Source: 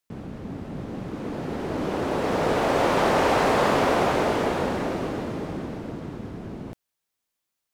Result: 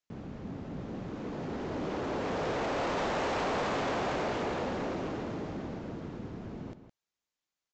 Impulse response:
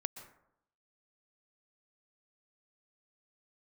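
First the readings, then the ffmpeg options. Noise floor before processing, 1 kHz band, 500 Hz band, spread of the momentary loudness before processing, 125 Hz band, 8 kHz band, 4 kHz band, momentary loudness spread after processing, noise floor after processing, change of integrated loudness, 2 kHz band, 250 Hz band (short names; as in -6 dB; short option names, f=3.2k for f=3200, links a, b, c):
-83 dBFS, -10.0 dB, -9.5 dB, 16 LU, -8.0 dB, -10.0 dB, -8.5 dB, 11 LU, under -85 dBFS, -10.0 dB, -9.0 dB, -8.5 dB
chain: -filter_complex "[0:a]aresample=16000,asoftclip=type=tanh:threshold=-23dB,aresample=44100,asplit=2[a][b];[b]adelay=163.3,volume=-11dB,highshelf=f=4k:g=-3.67[c];[a][c]amix=inputs=2:normalize=0,volume=-5.5dB"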